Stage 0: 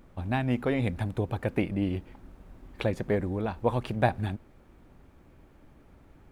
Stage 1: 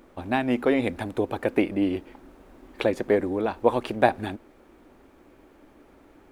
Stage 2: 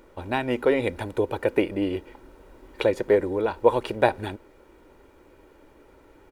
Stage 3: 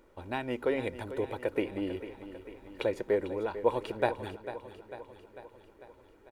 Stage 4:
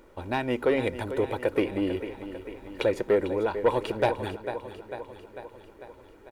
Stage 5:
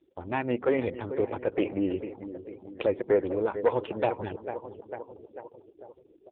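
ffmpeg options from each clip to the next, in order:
-af "lowshelf=f=210:t=q:w=1.5:g=-10.5,volume=5dB"
-af "aecho=1:1:2.1:0.46"
-af "aecho=1:1:447|894|1341|1788|2235|2682|3129:0.237|0.14|0.0825|0.0487|0.0287|0.017|0.01,volume=-8.5dB"
-af "asoftclip=type=tanh:threshold=-20.5dB,volume=7dB"
-af "afftfilt=real='re*gte(hypot(re,im),0.0112)':imag='im*gte(hypot(re,im),0.0112)':win_size=1024:overlap=0.75" -ar 8000 -c:a libopencore_amrnb -b:a 4750

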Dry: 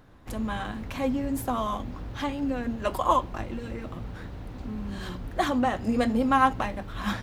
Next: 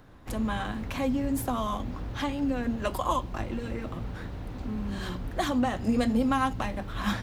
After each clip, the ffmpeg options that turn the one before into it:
-filter_complex "[0:a]acrossover=split=250|3000[a][b][c];[b]acompressor=threshold=-32dB:ratio=2[d];[a][d][c]amix=inputs=3:normalize=0,volume=1.5dB"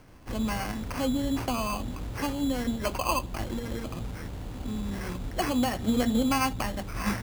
-af "acrusher=samples=12:mix=1:aa=0.000001"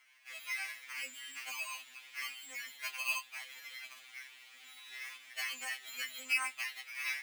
-af "highpass=f=2.2k:t=q:w=3.3,afftfilt=real='re*2.45*eq(mod(b,6),0)':imag='im*2.45*eq(mod(b,6),0)':win_size=2048:overlap=0.75,volume=-4.5dB"

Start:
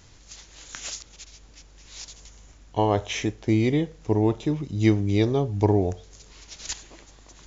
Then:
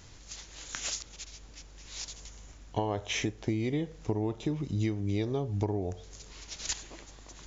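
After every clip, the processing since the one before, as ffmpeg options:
-af "acompressor=threshold=-27dB:ratio=10"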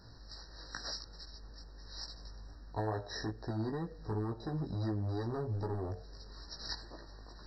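-filter_complex "[0:a]acrossover=split=860[a][b];[a]asoftclip=type=hard:threshold=-32.5dB[c];[c][b]amix=inputs=2:normalize=0,flanger=delay=16.5:depth=2.6:speed=2.3,afftfilt=real='re*eq(mod(floor(b*sr/1024/1900),2),0)':imag='im*eq(mod(floor(b*sr/1024/1900),2),0)':win_size=1024:overlap=0.75,volume=1.5dB"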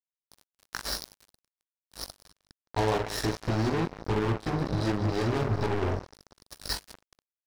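-filter_complex "[0:a]aeval=exprs='sgn(val(0))*max(abs(val(0))-0.00178,0)':c=same,asplit=2[a][b];[b]aecho=0:1:42|44|184|406|494:0.299|0.447|0.355|0.106|0.119[c];[a][c]amix=inputs=2:normalize=0,acrusher=bits=5:mix=0:aa=0.5,volume=8.5dB"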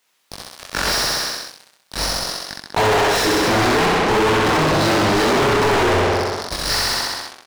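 -filter_complex "[0:a]flanger=delay=20:depth=5.3:speed=2.8,aecho=1:1:65|130|195|260|325|390|455|520:0.631|0.372|0.22|0.13|0.0765|0.0451|0.0266|0.0157,asplit=2[a][b];[b]highpass=f=720:p=1,volume=42dB,asoftclip=type=tanh:threshold=-12.5dB[c];[a][c]amix=inputs=2:normalize=0,lowpass=f=4k:p=1,volume=-6dB,volume=3dB"

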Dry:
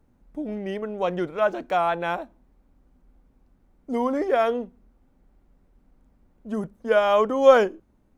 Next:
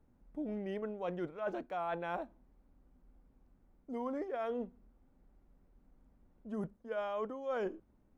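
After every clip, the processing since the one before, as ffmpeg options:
-af "highshelf=f=3.1k:g=-7.5,areverse,acompressor=threshold=-28dB:ratio=16,areverse,volume=-6dB"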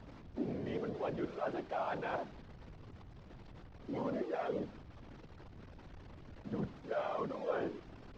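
-af "aeval=exprs='val(0)+0.5*0.00501*sgn(val(0))':c=same,afftfilt=real='hypot(re,im)*cos(2*PI*random(0))':imag='hypot(re,im)*sin(2*PI*random(1))':win_size=512:overlap=0.75,lowpass=f=5.4k:w=0.5412,lowpass=f=5.4k:w=1.3066,volume=5dB"

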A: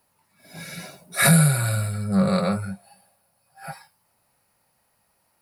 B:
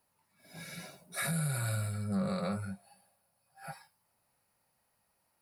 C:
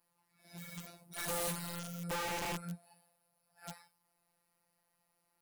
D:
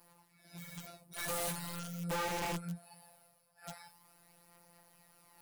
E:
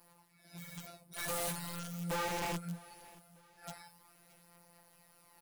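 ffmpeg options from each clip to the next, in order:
-af "alimiter=limit=-16.5dB:level=0:latency=1:release=97,volume=-8.5dB"
-af "afftfilt=real='hypot(re,im)*cos(PI*b)':imag='0':win_size=1024:overlap=0.75,aeval=exprs='(mod(44.7*val(0)+1,2)-1)/44.7':c=same,volume=1dB"
-af "areverse,acompressor=mode=upward:threshold=-46dB:ratio=2.5,areverse,flanger=delay=5.6:depth=2.1:regen=57:speed=0.43:shape=triangular,volume=4dB"
-af "aecho=1:1:625|1250|1875:0.0841|0.0353|0.0148"

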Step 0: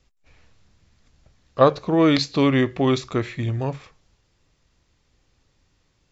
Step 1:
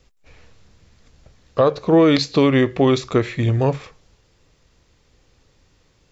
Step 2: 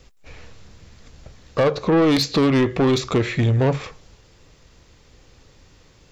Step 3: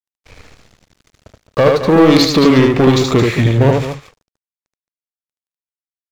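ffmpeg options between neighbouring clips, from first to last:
-af "equalizer=f=470:t=o:w=0.48:g=5,alimiter=limit=-12.5dB:level=0:latency=1:release=329,volume=6.5dB"
-filter_complex "[0:a]asplit=2[a][b];[b]acompressor=threshold=-24dB:ratio=6,volume=-1.5dB[c];[a][c]amix=inputs=2:normalize=0,asoftclip=type=tanh:threshold=-14.5dB,volume=1.5dB"
-af "aeval=exprs='sgn(val(0))*max(abs(val(0))-0.0106,0)':c=same,aecho=1:1:75.8|218.7:0.708|0.282,volume=6.5dB"

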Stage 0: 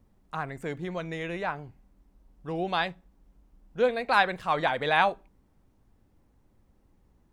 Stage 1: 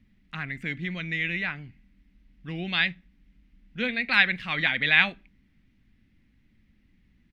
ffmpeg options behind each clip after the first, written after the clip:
-af "firequalizer=gain_entry='entry(110,0);entry(220,6);entry(420,-11);entry(930,-13);entry(2000,13);entry(7500,-9)':delay=0.05:min_phase=1"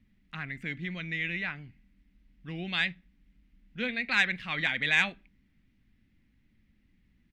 -af "asoftclip=type=tanh:threshold=-7dB,volume=-4dB"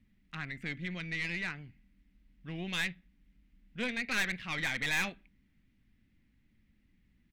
-af "aeval=exprs='(tanh(20*val(0)+0.5)-tanh(0.5))/20':c=same"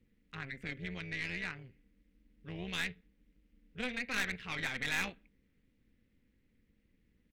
-af "tremolo=f=260:d=0.71"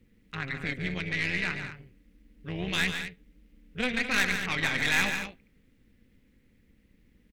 -af "aecho=1:1:142.9|212.8:0.398|0.282,volume=8.5dB"

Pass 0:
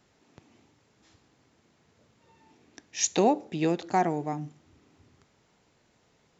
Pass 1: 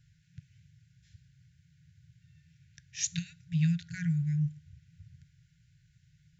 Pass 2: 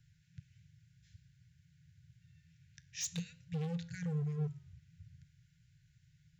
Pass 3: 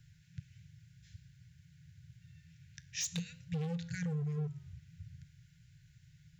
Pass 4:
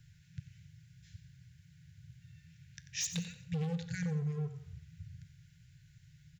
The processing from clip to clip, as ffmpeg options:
-af "afftfilt=real='re*(1-between(b*sr/4096,180,1400))':imag='im*(1-between(b*sr/4096,180,1400))':win_size=4096:overlap=0.75,lowshelf=f=220:t=q:w=1.5:g=13.5,volume=-5.5dB"
-filter_complex "[0:a]acrossover=split=320|3000[a][b][c];[b]acompressor=threshold=-47dB:ratio=6[d];[a][d][c]amix=inputs=3:normalize=0,volume=30dB,asoftclip=hard,volume=-30dB,flanger=delay=8.8:depth=3.4:regen=-89:speed=0.51:shape=sinusoidal,volume=1.5dB"
-af "acompressor=threshold=-40dB:ratio=6,volume=6dB"
-af "aecho=1:1:90|180|270|360:0.251|0.0879|0.0308|0.0108,volume=1dB"

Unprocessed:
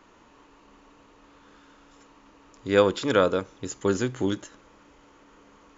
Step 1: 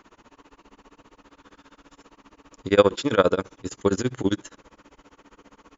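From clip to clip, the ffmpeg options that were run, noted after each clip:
-af "tremolo=f=15:d=0.97,volume=6dB"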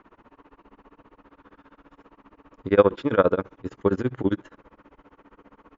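-af "lowpass=1.9k"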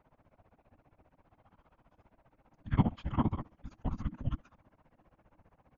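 -af "afftfilt=real='hypot(re,im)*cos(2*PI*random(0))':imag='hypot(re,im)*sin(2*PI*random(1))':win_size=512:overlap=0.75,afreqshift=-330,volume=-5.5dB"

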